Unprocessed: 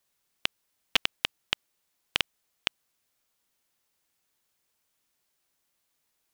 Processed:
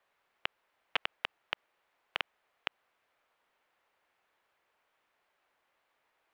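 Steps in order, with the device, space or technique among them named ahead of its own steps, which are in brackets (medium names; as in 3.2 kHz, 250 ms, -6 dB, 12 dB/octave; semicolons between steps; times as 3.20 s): DJ mixer with the lows and highs turned down (three-band isolator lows -22 dB, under 490 Hz, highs -24 dB, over 2.7 kHz; peak limiter -20.5 dBFS, peak gain reduction 11.5 dB); bass shelf 440 Hz +9.5 dB; trim +9 dB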